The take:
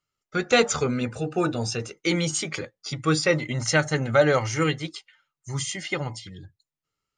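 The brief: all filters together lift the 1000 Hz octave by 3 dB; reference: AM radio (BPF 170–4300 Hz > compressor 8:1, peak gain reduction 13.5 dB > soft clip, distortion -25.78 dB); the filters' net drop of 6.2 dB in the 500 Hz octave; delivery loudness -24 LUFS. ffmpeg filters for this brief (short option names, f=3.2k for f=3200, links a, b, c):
-af "highpass=170,lowpass=4.3k,equalizer=f=500:t=o:g=-9,equalizer=f=1k:t=o:g=7,acompressor=threshold=-28dB:ratio=8,asoftclip=threshold=-16.5dB,volume=10dB"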